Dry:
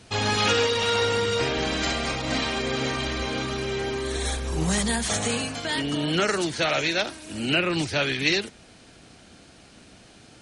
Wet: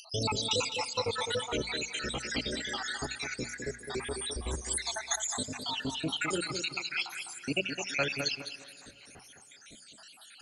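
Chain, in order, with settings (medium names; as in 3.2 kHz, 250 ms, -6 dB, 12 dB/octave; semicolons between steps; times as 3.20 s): random holes in the spectrogram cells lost 81%; treble shelf 5 kHz +10 dB; hum notches 60/120/180/240 Hz; in parallel at +2.5 dB: compression, threshold -41 dBFS, peak gain reduction 19 dB; on the sum: wow and flutter 120 cents; upward compressor, threshold -43 dBFS; on a send: tape echo 208 ms, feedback 29%, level -5.5 dB, low-pass 3.4 kHz; on the sum: plate-style reverb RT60 4.3 s, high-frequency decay 0.75×, DRR 20 dB; trim -6 dB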